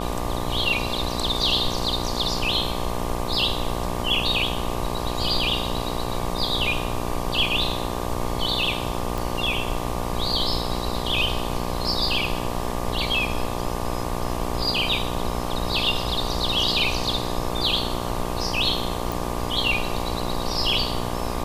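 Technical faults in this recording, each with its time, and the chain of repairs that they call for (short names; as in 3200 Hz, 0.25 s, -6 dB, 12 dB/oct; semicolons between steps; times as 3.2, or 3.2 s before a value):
buzz 60 Hz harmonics 20 -29 dBFS
9.18 pop
19.12 pop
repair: de-click; de-hum 60 Hz, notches 20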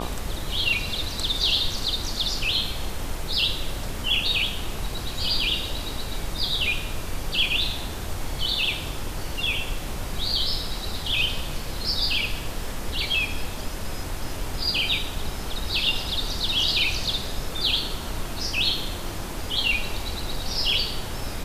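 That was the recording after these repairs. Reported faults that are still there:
none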